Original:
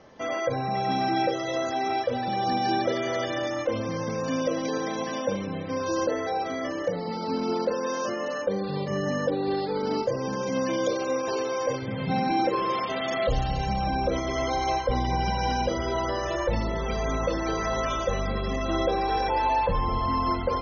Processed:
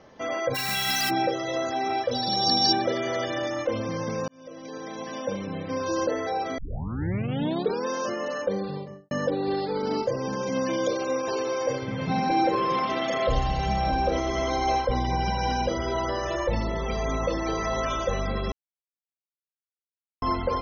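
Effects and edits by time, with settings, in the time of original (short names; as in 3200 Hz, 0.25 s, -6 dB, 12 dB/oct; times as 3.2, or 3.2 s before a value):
0.54–1.09 spectral whitening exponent 0.1
2.11–2.73 resonant high shelf 3300 Hz +11.5 dB, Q 3
4.28–5.63 fade in linear
6.58 tape start 1.28 s
8.53–9.11 studio fade out
11.39–14.85 tapped delay 79/320/623 ms -9.5/-18/-10.5 dB
16.39–17.82 Butterworth band-stop 1500 Hz, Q 7.3
18.52–20.22 mute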